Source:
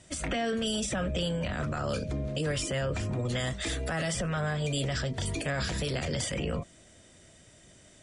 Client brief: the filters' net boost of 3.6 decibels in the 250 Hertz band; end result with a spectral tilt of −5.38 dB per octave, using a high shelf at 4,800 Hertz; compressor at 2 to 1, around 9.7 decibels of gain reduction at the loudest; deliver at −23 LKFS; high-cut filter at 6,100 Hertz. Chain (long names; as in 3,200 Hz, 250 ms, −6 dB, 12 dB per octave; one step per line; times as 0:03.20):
low-pass filter 6,100 Hz
parametric band 250 Hz +5 dB
high-shelf EQ 4,800 Hz −6 dB
downward compressor 2 to 1, threshold −44 dBFS
level +17 dB